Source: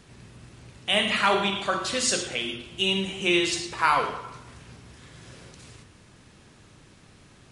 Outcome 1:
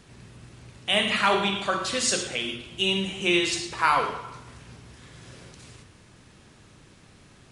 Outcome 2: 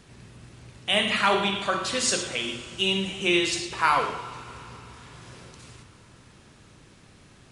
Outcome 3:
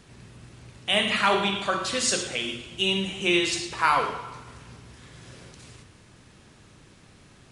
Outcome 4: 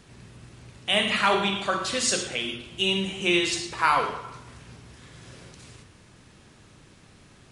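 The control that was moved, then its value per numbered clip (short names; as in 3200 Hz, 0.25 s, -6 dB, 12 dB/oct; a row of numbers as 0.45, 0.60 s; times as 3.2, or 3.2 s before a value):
Schroeder reverb, RT60: 0.78, 4.6, 1.6, 0.32 s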